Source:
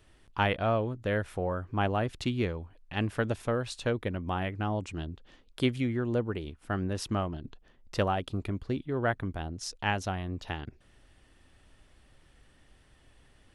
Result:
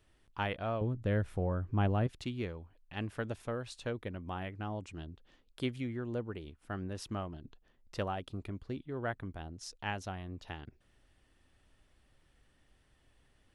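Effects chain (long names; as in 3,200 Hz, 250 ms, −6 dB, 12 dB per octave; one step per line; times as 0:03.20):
0:00.81–0:02.07: low-shelf EQ 320 Hz +11.5 dB
level −8 dB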